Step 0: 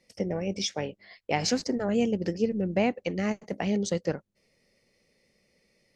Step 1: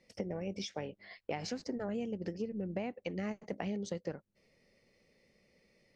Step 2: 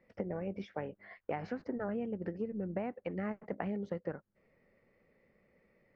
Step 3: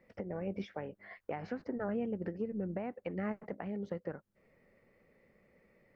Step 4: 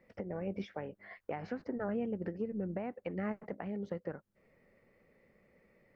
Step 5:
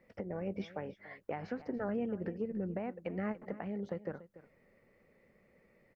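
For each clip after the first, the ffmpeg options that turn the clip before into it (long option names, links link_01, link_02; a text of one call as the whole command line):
ffmpeg -i in.wav -af "acompressor=threshold=-35dB:ratio=6,highshelf=frequency=5900:gain=-11" out.wav
ffmpeg -i in.wav -af "lowpass=frequency=1500:width_type=q:width=1.7" out.wav
ffmpeg -i in.wav -af "alimiter=level_in=5dB:limit=-24dB:level=0:latency=1:release=399,volume=-5dB,volume=2.5dB" out.wav
ffmpeg -i in.wav -af anull out.wav
ffmpeg -i in.wav -af "aecho=1:1:288:0.15" out.wav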